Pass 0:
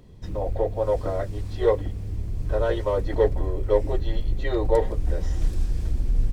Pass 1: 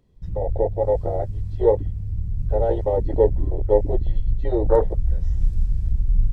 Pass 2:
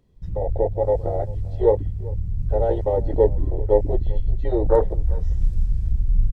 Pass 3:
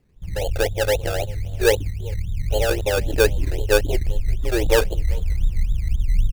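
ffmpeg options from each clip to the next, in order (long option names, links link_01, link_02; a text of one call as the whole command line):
ffmpeg -i in.wav -af "afwtdn=0.0794,volume=3.5dB" out.wav
ffmpeg -i in.wav -filter_complex "[0:a]asplit=2[link_01][link_02];[link_02]adelay=390.7,volume=-21dB,highshelf=frequency=4000:gain=-8.79[link_03];[link_01][link_03]amix=inputs=2:normalize=0" out.wav
ffmpeg -i in.wav -af "acrusher=samples=17:mix=1:aa=0.000001:lfo=1:lforange=10.2:lforate=3.8" out.wav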